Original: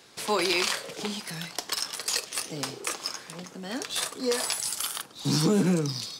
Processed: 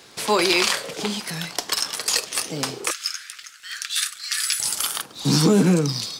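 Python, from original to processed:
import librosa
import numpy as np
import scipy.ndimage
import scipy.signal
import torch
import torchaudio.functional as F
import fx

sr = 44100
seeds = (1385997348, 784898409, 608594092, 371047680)

y = fx.steep_highpass(x, sr, hz=1300.0, slope=72, at=(2.91, 4.6))
y = fx.dmg_crackle(y, sr, seeds[0], per_s=56.0, level_db=-45.0)
y = y * librosa.db_to_amplitude(6.5)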